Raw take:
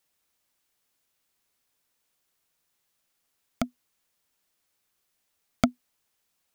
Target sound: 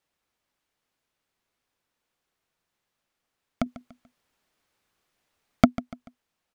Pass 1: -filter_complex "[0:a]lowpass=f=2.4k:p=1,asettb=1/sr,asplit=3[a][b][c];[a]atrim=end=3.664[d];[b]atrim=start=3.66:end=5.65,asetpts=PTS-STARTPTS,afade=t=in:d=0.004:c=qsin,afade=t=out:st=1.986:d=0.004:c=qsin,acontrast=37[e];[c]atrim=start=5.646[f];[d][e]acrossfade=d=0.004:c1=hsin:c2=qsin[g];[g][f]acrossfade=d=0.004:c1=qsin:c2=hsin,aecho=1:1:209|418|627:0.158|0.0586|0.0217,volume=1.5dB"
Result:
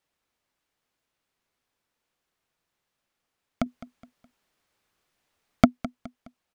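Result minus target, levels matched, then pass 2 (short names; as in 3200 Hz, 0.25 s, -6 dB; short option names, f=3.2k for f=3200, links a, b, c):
echo 64 ms late
-filter_complex "[0:a]lowpass=f=2.4k:p=1,asettb=1/sr,asplit=3[a][b][c];[a]atrim=end=3.664[d];[b]atrim=start=3.66:end=5.65,asetpts=PTS-STARTPTS,afade=t=in:d=0.004:c=qsin,afade=t=out:st=1.986:d=0.004:c=qsin,acontrast=37[e];[c]atrim=start=5.646[f];[d][e]acrossfade=d=0.004:c1=hsin:c2=qsin[g];[g][f]acrossfade=d=0.004:c1=qsin:c2=hsin,aecho=1:1:145|290|435:0.158|0.0586|0.0217,volume=1.5dB"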